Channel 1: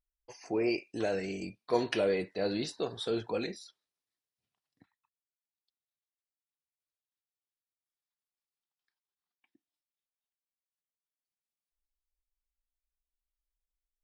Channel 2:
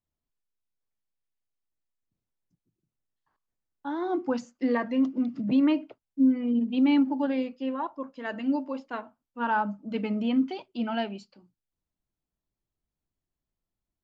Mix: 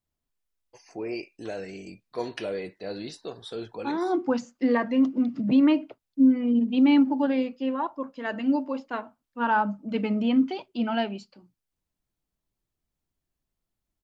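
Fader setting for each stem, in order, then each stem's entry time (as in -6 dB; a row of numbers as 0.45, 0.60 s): -3.0, +3.0 dB; 0.45, 0.00 s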